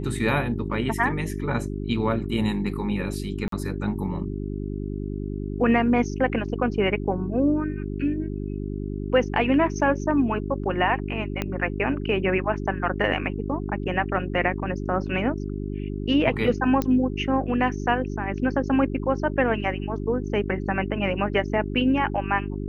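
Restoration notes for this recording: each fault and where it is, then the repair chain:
hum 50 Hz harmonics 8 -30 dBFS
3.48–3.52 s: dropout 43 ms
11.42 s: pop -12 dBFS
16.82 s: pop -12 dBFS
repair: de-click; de-hum 50 Hz, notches 8; interpolate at 3.48 s, 43 ms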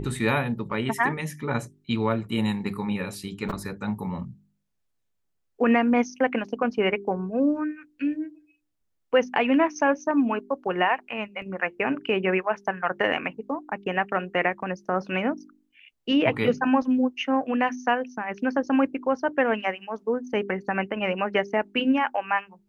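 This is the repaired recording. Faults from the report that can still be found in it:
11.42 s: pop

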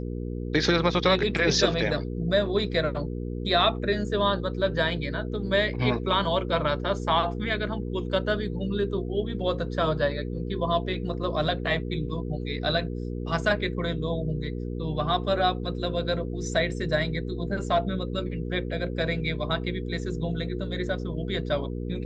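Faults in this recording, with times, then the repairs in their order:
hum 60 Hz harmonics 8 -32 dBFS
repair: de-hum 60 Hz, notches 8

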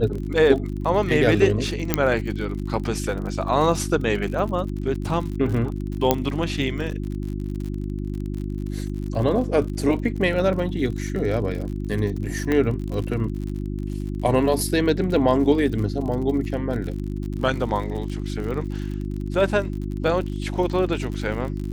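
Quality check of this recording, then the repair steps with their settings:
crackle 54 per s -30 dBFS
hum 50 Hz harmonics 7 -28 dBFS
1.94 s: pop -2 dBFS
6.11 s: pop -3 dBFS
12.52 s: pop -11 dBFS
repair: de-click; de-hum 50 Hz, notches 7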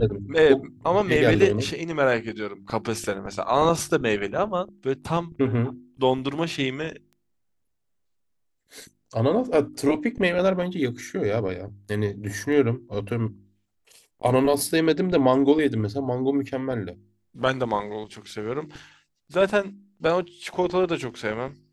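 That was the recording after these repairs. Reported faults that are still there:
12.52 s: pop

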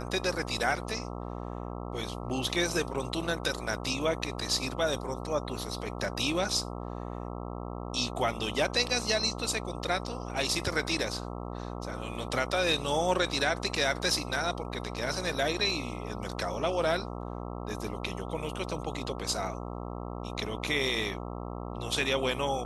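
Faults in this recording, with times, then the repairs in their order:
buzz 60 Hz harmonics 22 -38 dBFS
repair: de-hum 60 Hz, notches 22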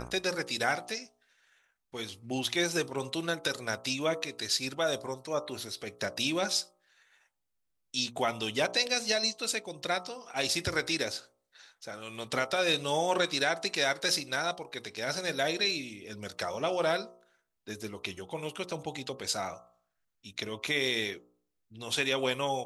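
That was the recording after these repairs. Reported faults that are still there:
nothing left

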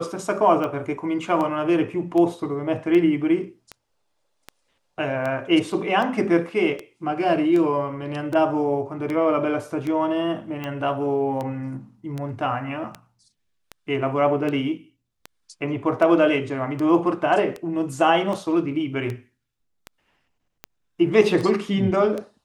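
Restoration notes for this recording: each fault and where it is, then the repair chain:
tick 78 rpm -17 dBFS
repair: de-click

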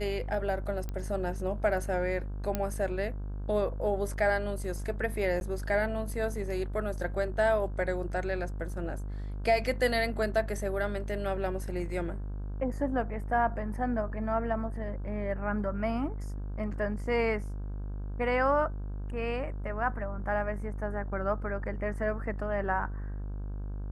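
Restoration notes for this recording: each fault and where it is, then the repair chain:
buzz 50 Hz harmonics 33 -36 dBFS
0.89 s: pop -23 dBFS
2.55 s: pop -15 dBFS
5.40–5.41 s: dropout 11 ms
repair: de-click; de-hum 50 Hz, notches 33; interpolate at 5.40 s, 11 ms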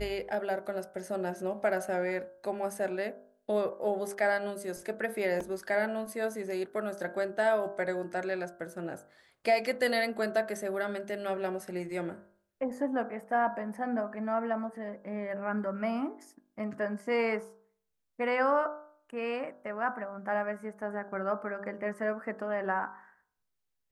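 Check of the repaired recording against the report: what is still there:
nothing left

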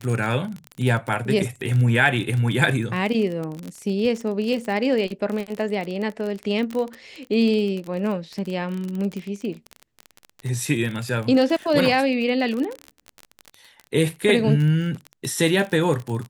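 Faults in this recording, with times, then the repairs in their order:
crackle 31 per s -26 dBFS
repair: de-click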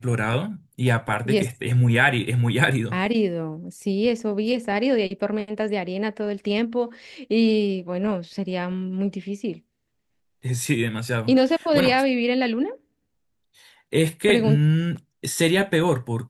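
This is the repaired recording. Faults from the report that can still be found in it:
nothing left

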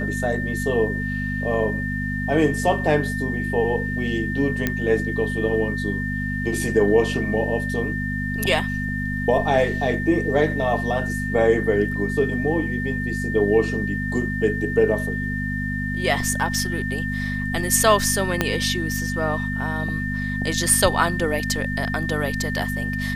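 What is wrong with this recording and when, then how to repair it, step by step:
hum 50 Hz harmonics 5 -27 dBFS
whine 1.8 kHz -28 dBFS
4.67 s: pop -7 dBFS
18.41 s: pop -4 dBFS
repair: de-click; band-stop 1.8 kHz, Q 30; de-hum 50 Hz, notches 5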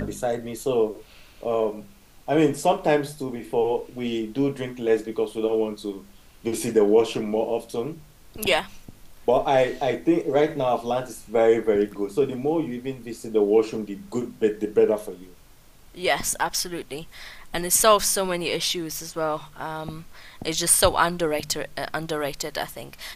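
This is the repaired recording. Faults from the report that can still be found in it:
18.41 s: pop

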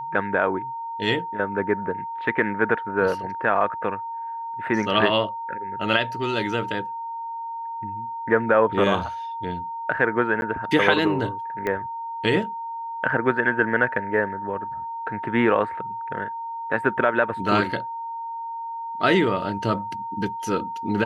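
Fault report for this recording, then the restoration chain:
whine 920 Hz -29 dBFS
10.41–10.42 s: dropout 11 ms
11.67 s: pop -14 dBFS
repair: de-click; band-stop 920 Hz, Q 30; interpolate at 10.41 s, 11 ms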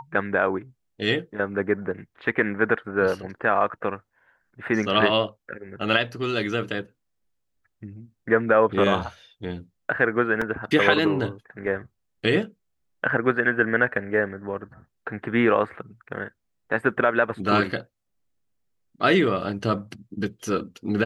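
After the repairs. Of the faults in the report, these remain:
11.67 s: pop

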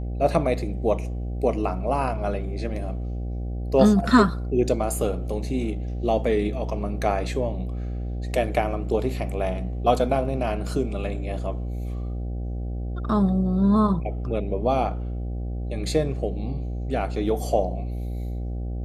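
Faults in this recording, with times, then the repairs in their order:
buzz 60 Hz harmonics 13 -29 dBFS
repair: de-hum 60 Hz, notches 13

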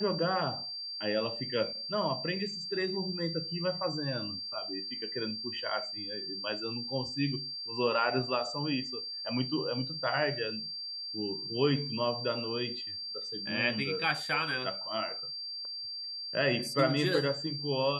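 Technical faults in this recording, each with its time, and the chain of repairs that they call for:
whine 4.7 kHz -37 dBFS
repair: band-stop 4.7 kHz, Q 30

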